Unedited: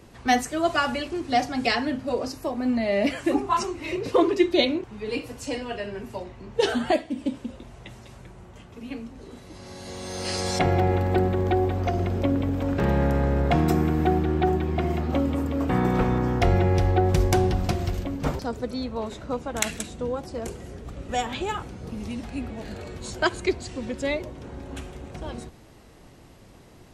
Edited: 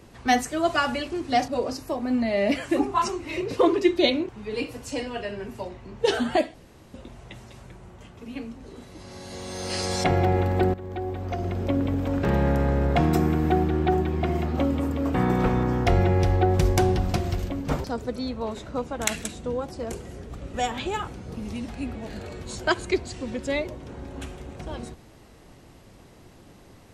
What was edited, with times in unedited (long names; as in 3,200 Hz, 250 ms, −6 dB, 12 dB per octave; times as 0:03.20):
0:01.48–0:02.03: remove
0:07.09–0:07.49: fill with room tone
0:11.29–0:12.45: fade in, from −15.5 dB